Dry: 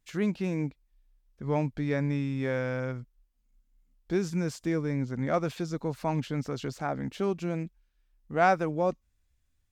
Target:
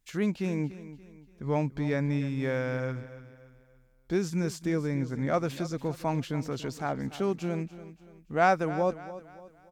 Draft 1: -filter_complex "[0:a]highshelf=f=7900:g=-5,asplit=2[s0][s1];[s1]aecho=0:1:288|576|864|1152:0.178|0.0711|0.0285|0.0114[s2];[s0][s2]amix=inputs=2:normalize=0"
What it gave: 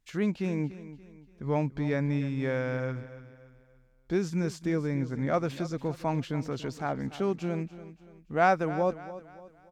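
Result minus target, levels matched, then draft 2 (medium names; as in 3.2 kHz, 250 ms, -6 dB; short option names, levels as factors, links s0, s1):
8 kHz band -4.0 dB
-filter_complex "[0:a]highshelf=f=7900:g=4.5,asplit=2[s0][s1];[s1]aecho=0:1:288|576|864|1152:0.178|0.0711|0.0285|0.0114[s2];[s0][s2]amix=inputs=2:normalize=0"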